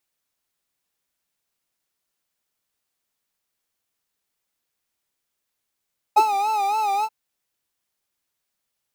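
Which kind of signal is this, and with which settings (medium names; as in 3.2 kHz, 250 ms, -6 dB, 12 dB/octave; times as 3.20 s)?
synth patch with vibrato G#5, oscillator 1 triangle, interval +7 st, oscillator 2 level -12 dB, sub -26.5 dB, noise -29 dB, filter highpass, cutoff 160 Hz, Q 7.8, filter envelope 2 oct, filter decay 0.05 s, filter sustain 35%, attack 18 ms, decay 0.08 s, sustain -8 dB, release 0.05 s, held 0.88 s, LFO 3.6 Hz, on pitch 97 cents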